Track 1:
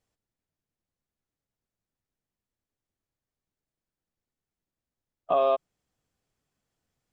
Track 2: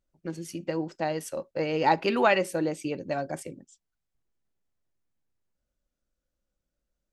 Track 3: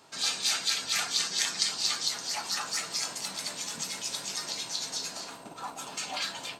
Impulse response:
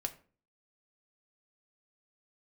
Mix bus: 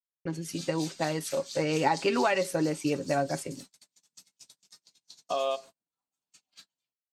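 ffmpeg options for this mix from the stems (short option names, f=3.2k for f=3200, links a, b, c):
-filter_complex "[0:a]lowpass=f=3.3k:t=q:w=4.9,volume=-11.5dB,asplit=2[a][b];[b]volume=-3dB[c];[1:a]acompressor=threshold=-24dB:ratio=6,aecho=1:1:7.2:0.45,agate=range=-33dB:threshold=-49dB:ratio=3:detection=peak,volume=1.5dB[d];[2:a]equalizer=f=930:w=0.33:g=-11,adelay=350,volume=-11dB[e];[3:a]atrim=start_sample=2205[f];[c][f]afir=irnorm=-1:irlink=0[g];[a][d][e][g]amix=inputs=4:normalize=0,agate=range=-36dB:threshold=-46dB:ratio=16:detection=peak"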